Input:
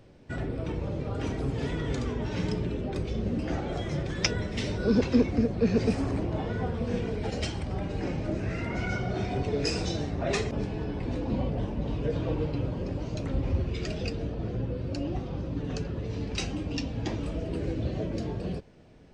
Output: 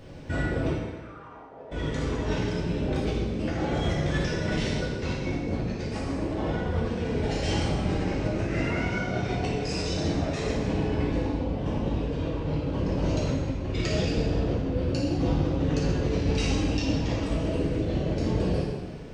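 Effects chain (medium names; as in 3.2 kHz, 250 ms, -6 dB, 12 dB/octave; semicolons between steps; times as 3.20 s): compressor with a negative ratio -35 dBFS, ratio -1; 0.71–1.71 s: band-pass filter 2.3 kHz -> 540 Hz, Q 5.6; plate-style reverb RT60 1.3 s, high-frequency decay 0.95×, DRR -5 dB; trim +2 dB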